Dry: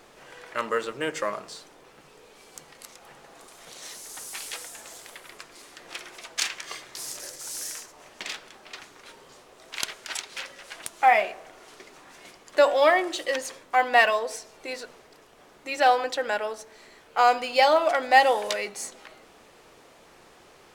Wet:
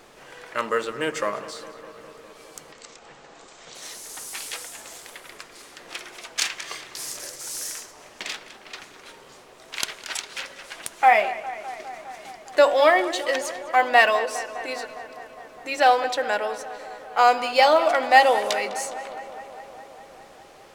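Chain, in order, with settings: 2.72–3.75 elliptic low-pass 7800 Hz, stop band 40 dB; on a send: darkening echo 0.204 s, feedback 78%, low-pass 4100 Hz, level -15 dB; on the sum: gain +2.5 dB

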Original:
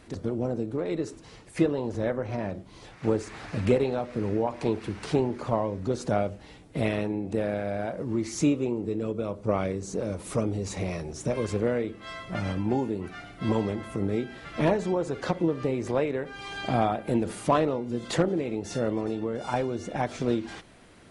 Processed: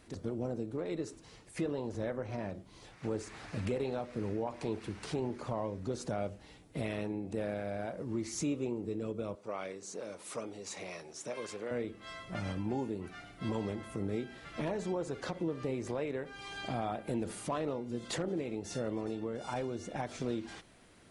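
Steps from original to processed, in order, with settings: high shelf 4600 Hz +5 dB; limiter -18 dBFS, peak gain reduction 6.5 dB; 9.35–11.71 weighting filter A; gain -7.5 dB

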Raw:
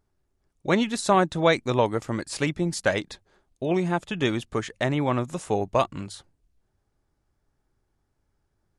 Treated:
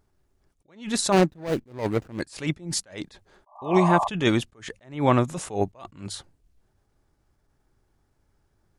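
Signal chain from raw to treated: 1.12–2.2 median filter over 41 samples; 3.46–4.08 painted sound noise 590–1200 Hz -30 dBFS; attack slew limiter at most 160 dB/s; gain +5.5 dB

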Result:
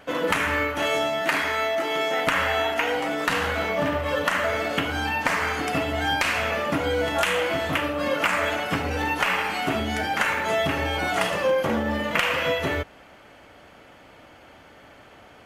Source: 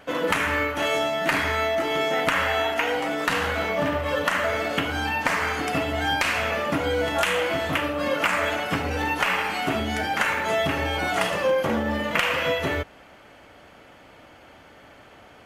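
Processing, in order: 1.21–2.27 HPF 310 Hz 6 dB/oct

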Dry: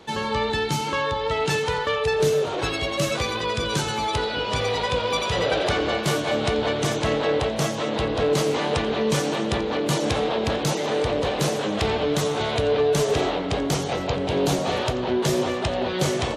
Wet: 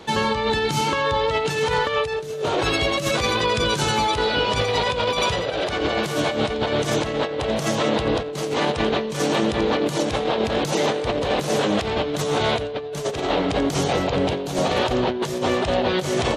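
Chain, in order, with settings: negative-ratio compressor -25 dBFS, ratio -0.5; gain +3.5 dB

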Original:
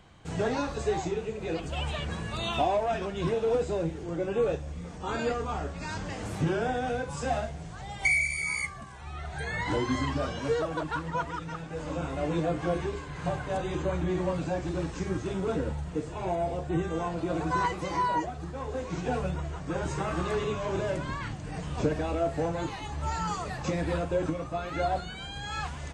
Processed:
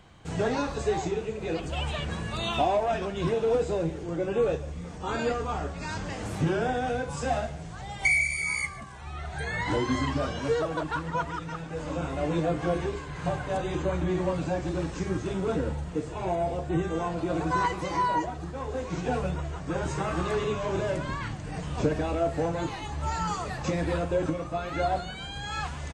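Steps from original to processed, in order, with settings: outdoor echo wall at 25 m, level -18 dB; gain +1.5 dB

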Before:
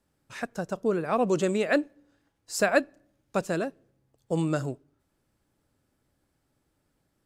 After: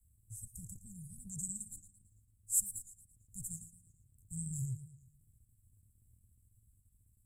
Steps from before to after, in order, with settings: Chebyshev band-stop 110–7800 Hz, order 5; high shelf 8100 Hz -4 dB; transient shaper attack -3 dB, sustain -7 dB; bell 200 Hz +10.5 dB 0.86 oct; warbling echo 0.112 s, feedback 47%, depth 129 cents, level -13.5 dB; gain +11.5 dB

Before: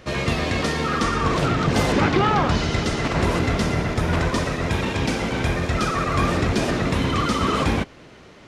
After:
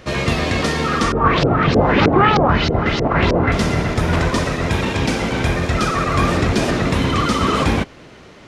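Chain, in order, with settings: 1.12–3.52 LFO low-pass saw up 3.2 Hz 410–5400 Hz; gain +4 dB

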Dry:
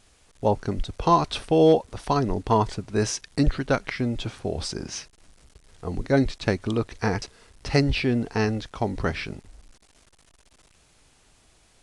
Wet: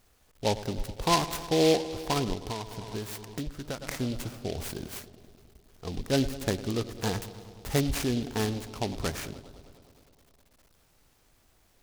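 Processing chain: analogue delay 0.103 s, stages 1024, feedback 77%, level -15 dB; 2.33–3.82 compressor 6:1, threshold -27 dBFS, peak gain reduction 13 dB; noise-modulated delay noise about 3600 Hz, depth 0.093 ms; gain -5.5 dB

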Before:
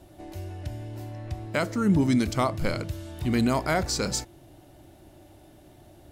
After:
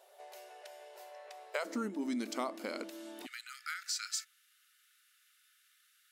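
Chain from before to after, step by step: compressor 12:1, threshold -26 dBFS, peak gain reduction 10 dB; brick-wall FIR high-pass 390 Hz, from 1.64 s 210 Hz, from 3.25 s 1200 Hz; gain -4.5 dB

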